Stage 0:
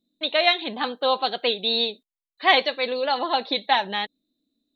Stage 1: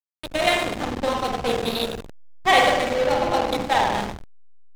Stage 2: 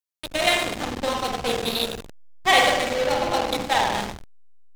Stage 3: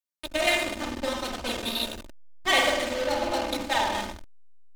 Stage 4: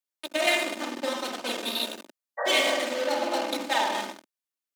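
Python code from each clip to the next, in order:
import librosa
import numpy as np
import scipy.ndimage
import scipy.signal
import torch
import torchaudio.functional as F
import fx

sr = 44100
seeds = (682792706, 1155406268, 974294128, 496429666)

y1 = fx.rev_spring(x, sr, rt60_s=1.6, pass_ms=(49,), chirp_ms=80, drr_db=-3.5)
y1 = fx.backlash(y1, sr, play_db=-13.5)
y2 = fx.high_shelf(y1, sr, hz=2400.0, db=7.0)
y2 = F.gain(torch.from_numpy(y2), -2.5).numpy()
y3 = y2 + 0.72 * np.pad(y2, (int(3.3 * sr / 1000.0), 0))[:len(y2)]
y3 = F.gain(torch.from_numpy(y3), -5.5).numpy()
y4 = fx.spec_repair(y3, sr, seeds[0], start_s=2.41, length_s=0.28, low_hz=410.0, high_hz=2000.0, source='after')
y4 = scipy.signal.sosfilt(scipy.signal.butter(4, 230.0, 'highpass', fs=sr, output='sos'), y4)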